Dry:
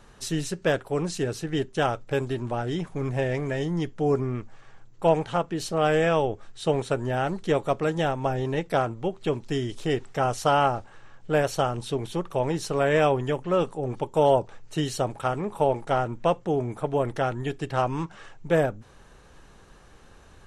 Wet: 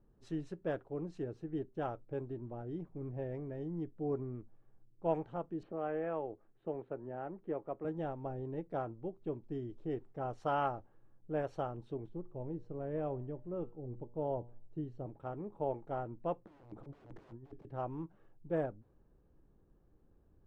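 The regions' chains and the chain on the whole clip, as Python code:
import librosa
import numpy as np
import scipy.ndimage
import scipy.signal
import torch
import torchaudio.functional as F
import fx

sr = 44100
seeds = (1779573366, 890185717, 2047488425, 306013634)

y = fx.chain(x, sr, fx.lowpass(hz=2600.0, slope=24),
    fx.low_shelf(hz=200.0, db=-12.0),
    fx.band_squash(depth_pct=40), at=(5.63, 7.85))
y = fx.chain(y, sr, fx.tilt_eq(slope=-2.0),
    fx.comb_fb(f0_hz=120.0, decay_s=0.65, harmonics='all', damping=0.0, mix_pct=50), at=(12.09, 15.06))
y = fx.chain(y, sr, fx.overflow_wrap(gain_db=25.0),
    fx.over_compress(threshold_db=-36.0, ratio=-0.5), at=(16.45, 17.65))
y = scipy.signal.lfilter([1.0, -0.9], [1.0], y)
y = fx.env_lowpass(y, sr, base_hz=350.0, full_db=-21.5)
y = fx.peak_eq(y, sr, hz=320.0, db=5.0, octaves=0.28)
y = F.gain(torch.from_numpy(y), 6.0).numpy()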